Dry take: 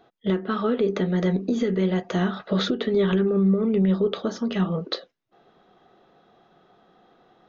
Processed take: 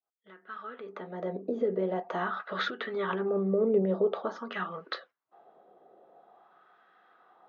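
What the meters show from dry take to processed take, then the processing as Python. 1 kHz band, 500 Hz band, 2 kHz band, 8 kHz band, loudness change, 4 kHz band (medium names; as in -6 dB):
-1.5 dB, -5.0 dB, -2.0 dB, no reading, -8.0 dB, -9.5 dB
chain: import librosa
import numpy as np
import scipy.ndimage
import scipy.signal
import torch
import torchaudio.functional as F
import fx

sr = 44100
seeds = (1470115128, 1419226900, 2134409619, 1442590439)

y = fx.fade_in_head(x, sr, length_s=2.41)
y = fx.wah_lfo(y, sr, hz=0.47, low_hz=530.0, high_hz=1600.0, q=2.1)
y = F.gain(torch.from_numpy(y), 4.0).numpy()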